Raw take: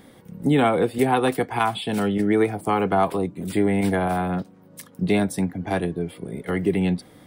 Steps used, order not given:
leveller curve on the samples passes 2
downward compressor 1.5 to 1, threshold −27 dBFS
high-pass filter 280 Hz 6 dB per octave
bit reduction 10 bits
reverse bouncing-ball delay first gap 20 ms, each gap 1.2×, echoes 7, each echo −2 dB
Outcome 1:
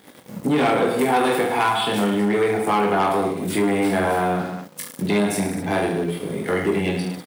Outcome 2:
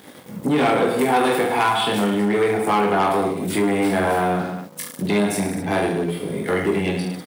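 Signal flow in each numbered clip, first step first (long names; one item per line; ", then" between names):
bit reduction, then reverse bouncing-ball delay, then leveller curve on the samples, then high-pass filter, then downward compressor
reverse bouncing-ball delay, then bit reduction, then downward compressor, then leveller curve on the samples, then high-pass filter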